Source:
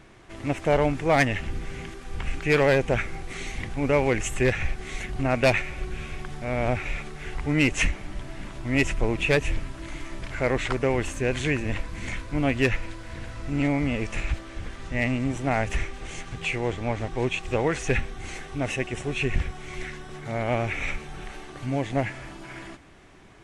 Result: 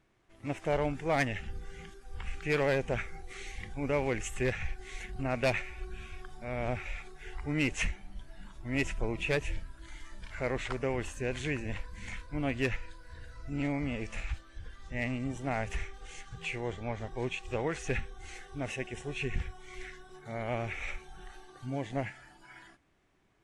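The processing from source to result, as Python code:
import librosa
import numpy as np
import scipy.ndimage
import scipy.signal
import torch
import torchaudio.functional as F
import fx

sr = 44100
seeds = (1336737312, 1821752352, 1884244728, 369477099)

y = fx.noise_reduce_blind(x, sr, reduce_db=11)
y = F.gain(torch.from_numpy(y), -8.5).numpy()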